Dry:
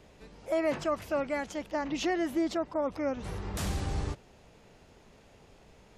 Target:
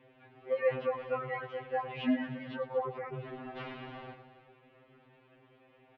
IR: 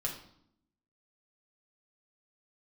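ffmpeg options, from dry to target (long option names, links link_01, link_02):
-af "aecho=1:1:105|113|231|303|410:0.141|0.119|0.178|0.112|0.119,highpass=frequency=240:width_type=q:width=0.5412,highpass=frequency=240:width_type=q:width=1.307,lowpass=frequency=3200:width_type=q:width=0.5176,lowpass=frequency=3200:width_type=q:width=0.7071,lowpass=frequency=3200:width_type=q:width=1.932,afreqshift=-110,afftfilt=real='re*2.45*eq(mod(b,6),0)':imag='im*2.45*eq(mod(b,6),0)':win_size=2048:overlap=0.75"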